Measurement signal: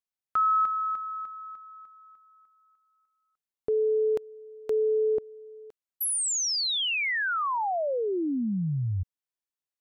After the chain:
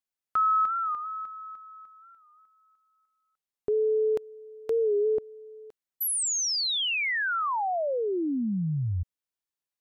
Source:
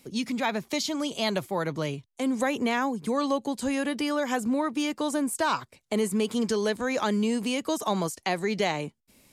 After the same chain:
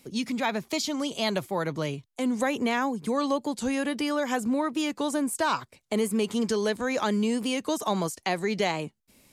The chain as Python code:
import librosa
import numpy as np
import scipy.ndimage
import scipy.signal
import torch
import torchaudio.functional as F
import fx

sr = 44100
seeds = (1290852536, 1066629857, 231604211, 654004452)

y = fx.record_warp(x, sr, rpm=45.0, depth_cents=100.0)